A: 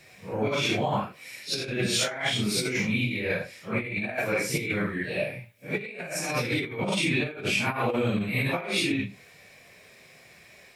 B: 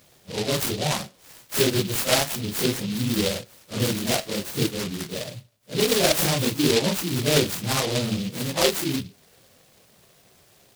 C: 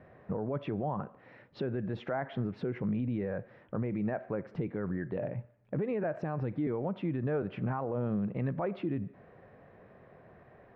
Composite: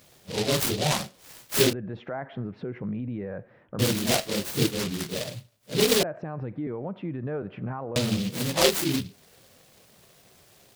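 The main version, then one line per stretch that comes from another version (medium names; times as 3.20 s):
B
1.73–3.79 s: from C
6.03–7.96 s: from C
not used: A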